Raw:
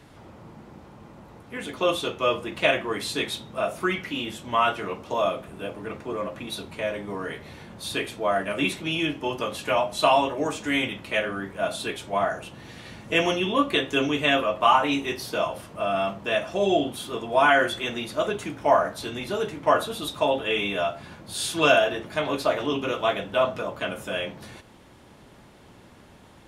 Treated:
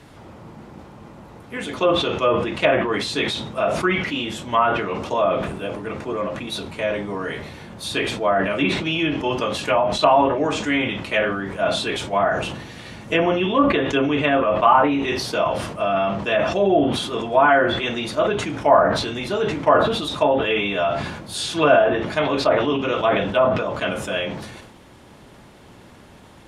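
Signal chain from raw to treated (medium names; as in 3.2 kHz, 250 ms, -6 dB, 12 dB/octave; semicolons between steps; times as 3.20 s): low-pass that closes with the level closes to 1.5 kHz, closed at -18 dBFS; decay stretcher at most 49 dB/s; trim +4.5 dB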